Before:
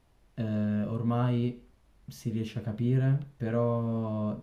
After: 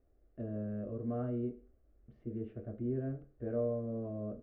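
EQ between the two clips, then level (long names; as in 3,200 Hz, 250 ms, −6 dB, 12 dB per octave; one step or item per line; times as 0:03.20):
transistor ladder low-pass 1,400 Hz, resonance 20%
phaser with its sweep stopped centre 390 Hz, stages 4
+2.0 dB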